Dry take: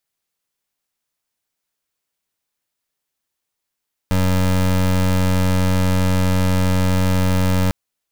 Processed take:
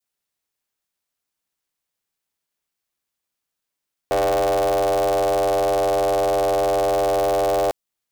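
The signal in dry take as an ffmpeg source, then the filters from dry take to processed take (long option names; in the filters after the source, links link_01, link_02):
-f lavfi -i "aevalsrc='0.158*(2*lt(mod(92.3*t,1),0.25)-1)':duration=3.6:sample_rate=44100"
-af "adynamicequalizer=threshold=0.0126:dfrequency=1300:dqfactor=0.82:tfrequency=1300:tqfactor=0.82:attack=5:release=100:ratio=0.375:range=3.5:mode=cutabove:tftype=bell,aeval=exprs='val(0)*sin(2*PI*590*n/s)':channel_layout=same"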